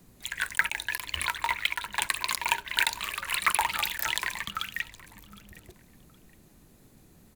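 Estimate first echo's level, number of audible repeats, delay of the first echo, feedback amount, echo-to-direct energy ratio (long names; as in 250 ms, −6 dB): −21.0 dB, 2, 765 ms, 25%, −20.5 dB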